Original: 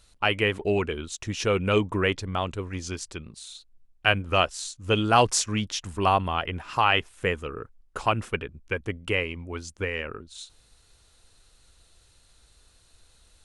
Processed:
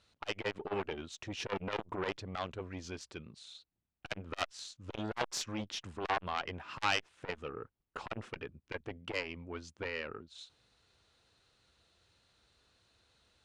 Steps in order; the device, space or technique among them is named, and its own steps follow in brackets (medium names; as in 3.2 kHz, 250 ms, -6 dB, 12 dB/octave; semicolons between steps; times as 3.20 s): valve radio (band-pass 100–4400 Hz; valve stage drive 15 dB, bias 0.7; transformer saturation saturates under 2 kHz); trim -2 dB